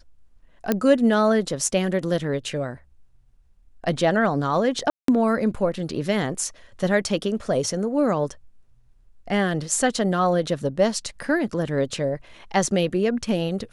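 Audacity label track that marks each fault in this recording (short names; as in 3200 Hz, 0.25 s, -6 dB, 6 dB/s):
0.720000	0.720000	pop -7 dBFS
4.900000	5.080000	gap 0.183 s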